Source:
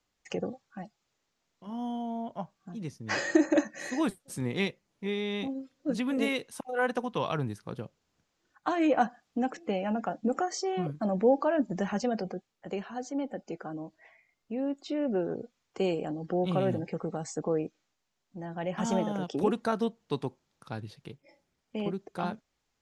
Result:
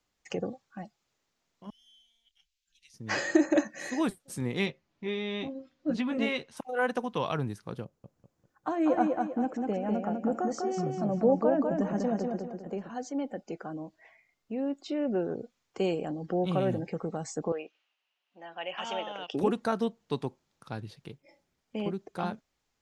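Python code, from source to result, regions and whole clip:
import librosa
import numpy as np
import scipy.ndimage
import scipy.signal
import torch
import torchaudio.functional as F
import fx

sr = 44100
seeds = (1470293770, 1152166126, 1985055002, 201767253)

y = fx.chain(x, sr, fx.cheby2_bandstop(low_hz=110.0, high_hz=1100.0, order=4, stop_db=50),
    fx.high_shelf(hz=3800.0, db=-6.5), at=(1.7, 2.94))
y = fx.chain(y, sr, fx.lowpass(hz=4700.0, slope=12),
    fx.notch(hz=470.0, q=8.3),
    fx.doubler(ms=13.0, db=-7.0), at=(4.66, 6.57))
y = fx.chain(y, sr, fx.peak_eq(hz=3400.0, db=-12.0, octaves=2.5),
    fx.echo_feedback(ms=198, feedback_pct=38, wet_db=-3.5), at=(7.84, 12.9))
y = fx.chain(y, sr, fx.bandpass_edges(low_hz=630.0, high_hz=4000.0),
    fx.peak_eq(hz=2800.0, db=14.0, octaves=0.38), at=(17.52, 19.34))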